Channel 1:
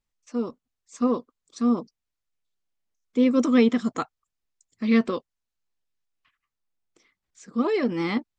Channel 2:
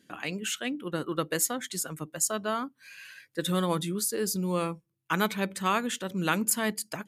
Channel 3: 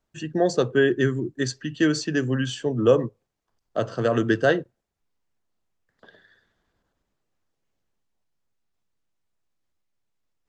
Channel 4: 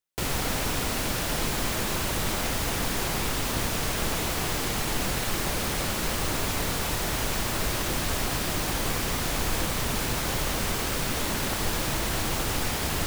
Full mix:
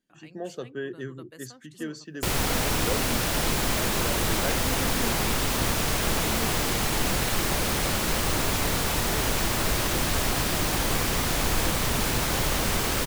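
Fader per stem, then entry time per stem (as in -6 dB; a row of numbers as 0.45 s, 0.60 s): -17.5 dB, -19.0 dB, -14.5 dB, +2.5 dB; 1.45 s, 0.00 s, 0.00 s, 2.05 s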